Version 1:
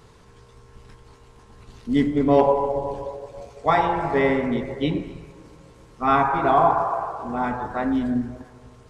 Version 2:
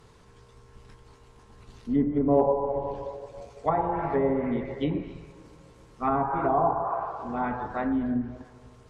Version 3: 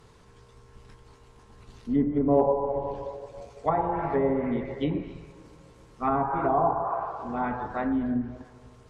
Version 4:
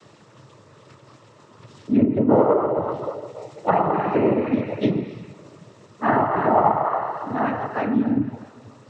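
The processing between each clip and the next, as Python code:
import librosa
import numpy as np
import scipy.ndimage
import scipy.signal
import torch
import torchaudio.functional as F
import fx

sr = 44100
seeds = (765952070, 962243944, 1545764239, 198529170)

y1 = fx.env_lowpass_down(x, sr, base_hz=840.0, full_db=-16.0)
y1 = y1 * librosa.db_to_amplitude(-4.0)
y2 = y1
y3 = fx.noise_vocoder(y2, sr, seeds[0], bands=12)
y3 = y3 * librosa.db_to_amplitude(6.5)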